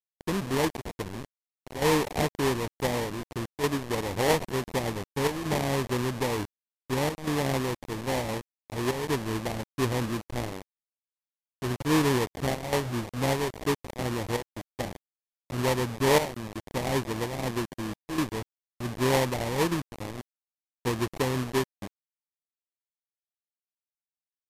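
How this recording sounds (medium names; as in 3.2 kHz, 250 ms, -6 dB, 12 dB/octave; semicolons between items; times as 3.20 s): aliases and images of a low sample rate 1.4 kHz, jitter 20%; chopped level 0.55 Hz, depth 65%, duty 90%; a quantiser's noise floor 6-bit, dither none; MP3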